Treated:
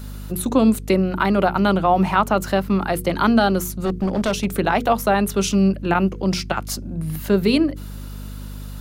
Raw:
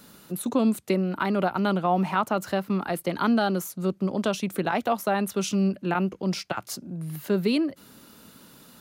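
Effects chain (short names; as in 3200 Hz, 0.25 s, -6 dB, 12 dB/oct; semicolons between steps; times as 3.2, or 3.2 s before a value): hum 50 Hz, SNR 13 dB; notches 60/120/180/240/300/360/420/480 Hz; 3.71–4.45 hard clip -23 dBFS, distortion -22 dB; gain +7 dB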